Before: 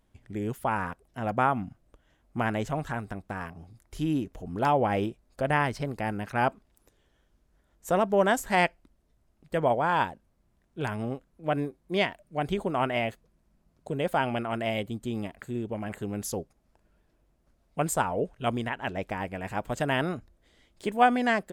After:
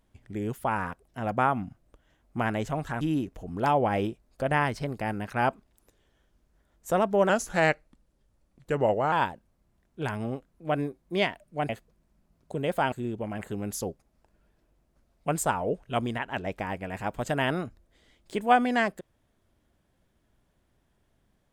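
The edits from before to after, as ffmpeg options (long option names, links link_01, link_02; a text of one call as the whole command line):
ffmpeg -i in.wav -filter_complex "[0:a]asplit=6[link_01][link_02][link_03][link_04][link_05][link_06];[link_01]atrim=end=3.012[link_07];[link_02]atrim=start=3.998:end=8.284[link_08];[link_03]atrim=start=8.28:end=9.91,asetpts=PTS-STARTPTS,asetrate=39249,aresample=44100,atrim=end_sample=80767,asetpts=PTS-STARTPTS[link_09];[link_04]atrim=start=9.906:end=12.482[link_10];[link_05]atrim=start=13.048:end=14.282[link_11];[link_06]atrim=start=15.428[link_12];[link_07][link_08]acrossfade=duration=0.004:curve1=hsin:curve2=hsin[link_13];[link_13][link_09]acrossfade=duration=0.004:curve1=hsin:curve2=hsin[link_14];[link_14][link_10]acrossfade=duration=0.004:curve1=hsin:curve2=hsin[link_15];[link_15][link_11]acrossfade=duration=0.004:curve1=hsin:curve2=hsin[link_16];[link_16][link_12]acrossfade=duration=0.004:curve1=hsin:curve2=hsin" out.wav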